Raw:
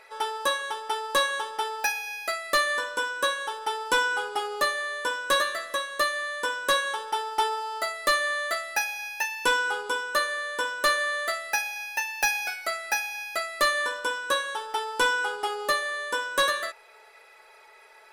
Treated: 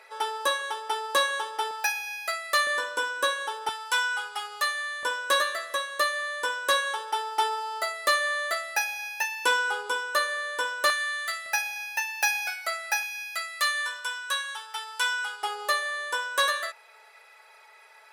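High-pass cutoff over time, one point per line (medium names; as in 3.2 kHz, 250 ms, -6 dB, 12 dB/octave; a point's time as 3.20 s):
330 Hz
from 1.71 s 700 Hz
from 2.67 s 290 Hz
from 3.69 s 1.1 kHz
from 5.03 s 420 Hz
from 10.90 s 1.4 kHz
from 11.46 s 660 Hz
from 13.03 s 1.4 kHz
from 15.43 s 620 Hz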